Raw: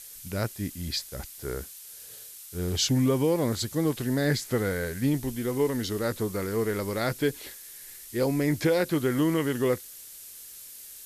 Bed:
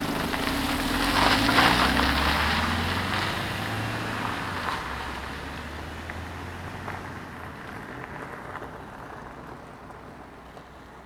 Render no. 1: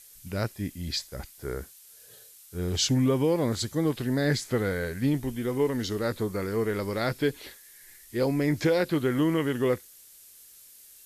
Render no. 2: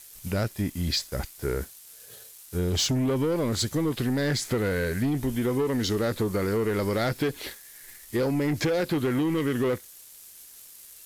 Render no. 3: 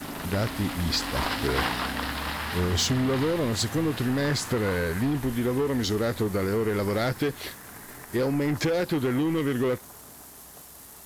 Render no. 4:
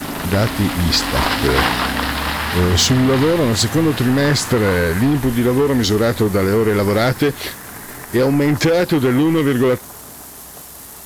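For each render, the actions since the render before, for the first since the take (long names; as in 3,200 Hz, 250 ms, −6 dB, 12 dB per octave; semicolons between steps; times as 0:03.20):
noise reduction from a noise print 7 dB
leveller curve on the samples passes 2; downward compressor, threshold −23 dBFS, peak gain reduction 6 dB
mix in bed −8 dB
level +10.5 dB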